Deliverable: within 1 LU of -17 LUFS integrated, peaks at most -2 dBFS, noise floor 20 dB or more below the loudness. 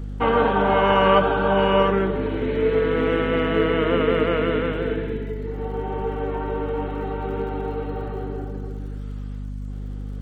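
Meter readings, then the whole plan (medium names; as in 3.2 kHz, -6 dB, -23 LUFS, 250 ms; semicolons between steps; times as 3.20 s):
tick rate 61 per s; hum 50 Hz; highest harmonic 250 Hz; hum level -28 dBFS; loudness -22.0 LUFS; peak level -5.0 dBFS; loudness target -17.0 LUFS
-> de-click; hum notches 50/100/150/200/250 Hz; trim +5 dB; peak limiter -2 dBFS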